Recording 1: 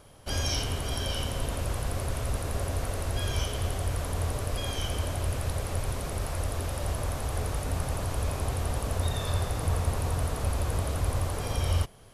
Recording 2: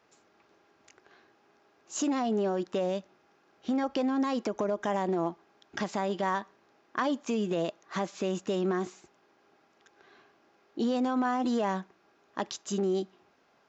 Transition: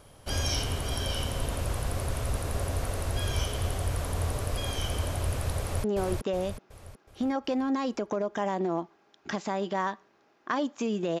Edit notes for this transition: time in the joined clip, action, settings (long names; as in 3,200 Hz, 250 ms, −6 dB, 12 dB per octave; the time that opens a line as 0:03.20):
recording 1
0:05.59–0:05.84: delay throw 370 ms, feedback 45%, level −2.5 dB
0:05.84: continue with recording 2 from 0:02.32